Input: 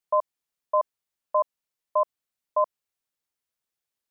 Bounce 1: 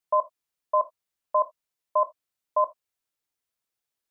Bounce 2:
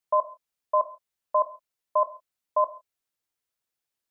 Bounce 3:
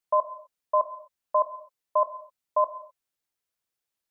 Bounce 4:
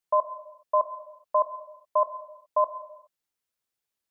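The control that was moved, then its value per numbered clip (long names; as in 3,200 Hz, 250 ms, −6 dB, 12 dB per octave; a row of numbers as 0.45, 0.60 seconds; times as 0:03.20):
reverb whose tail is shaped and stops, gate: 100, 180, 280, 440 milliseconds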